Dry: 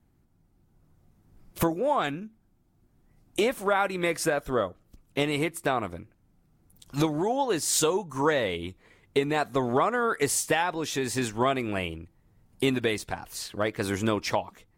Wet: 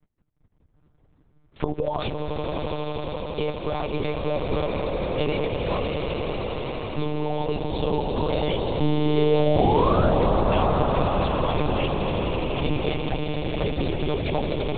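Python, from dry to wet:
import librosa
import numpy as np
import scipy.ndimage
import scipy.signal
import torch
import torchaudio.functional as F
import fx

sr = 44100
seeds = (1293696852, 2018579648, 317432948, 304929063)

y = fx.level_steps(x, sr, step_db=16)
y = fx.spec_paint(y, sr, seeds[0], shape='rise', start_s=8.8, length_s=1.37, low_hz=210.0, high_hz=1700.0, level_db=-28.0)
y = fx.env_flanger(y, sr, rest_ms=9.8, full_db=-33.0)
y = fx.dereverb_blind(y, sr, rt60_s=1.8)
y = fx.echo_swell(y, sr, ms=83, loudest=8, wet_db=-8)
y = fx.lpc_monotone(y, sr, seeds[1], pitch_hz=150.0, order=10)
y = y * 10.0 ** (8.0 / 20.0)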